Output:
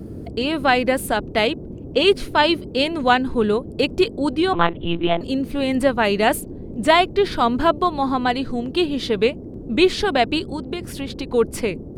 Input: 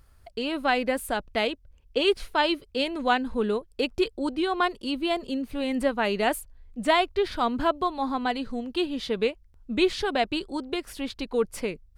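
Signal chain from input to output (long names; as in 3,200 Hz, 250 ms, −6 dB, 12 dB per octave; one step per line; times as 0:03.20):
0:10.42–0:11.32: downward compressor 5 to 1, threshold −32 dBFS, peak gain reduction 7 dB
noise in a band 43–390 Hz −41 dBFS
0:04.53–0:05.21: one-pitch LPC vocoder at 8 kHz 170 Hz
level +7 dB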